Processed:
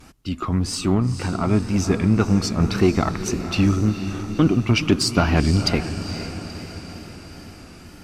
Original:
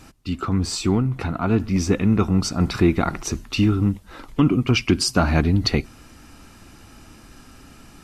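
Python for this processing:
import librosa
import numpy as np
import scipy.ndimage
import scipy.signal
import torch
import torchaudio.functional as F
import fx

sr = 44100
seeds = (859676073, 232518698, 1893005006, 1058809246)

y = fx.wow_flutter(x, sr, seeds[0], rate_hz=2.1, depth_cents=120.0)
y = fx.echo_diffused(y, sr, ms=477, feedback_pct=59, wet_db=-10)
y = fx.cheby_harmonics(y, sr, harmonics=(4, 7), levels_db=(-24, -42), full_scale_db=-5.5)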